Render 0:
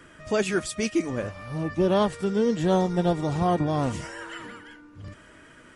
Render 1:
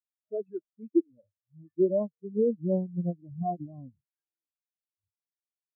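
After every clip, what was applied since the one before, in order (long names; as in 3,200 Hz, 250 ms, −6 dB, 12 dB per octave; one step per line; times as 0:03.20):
every bin expanded away from the loudest bin 4 to 1
level −1.5 dB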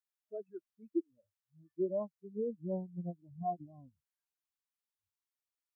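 octave-band graphic EQ 125/250/500/1,000 Hz −9/−8/−9/+4 dB
level −1 dB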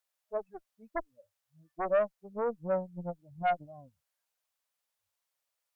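harmonic generator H 2 −7 dB, 5 −10 dB, 6 −16 dB, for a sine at −23.5 dBFS
low shelf with overshoot 440 Hz −6.5 dB, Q 3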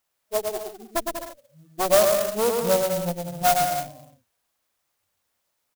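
on a send: bouncing-ball delay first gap 110 ms, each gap 0.75×, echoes 5
on the sum: converter with an unsteady clock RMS 0.094 ms
level +9 dB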